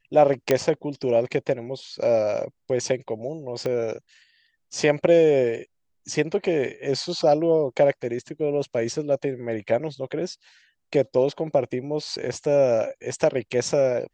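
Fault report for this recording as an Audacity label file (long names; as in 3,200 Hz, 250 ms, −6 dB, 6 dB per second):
0.510000	0.510000	click −6 dBFS
3.660000	3.660000	click −16 dBFS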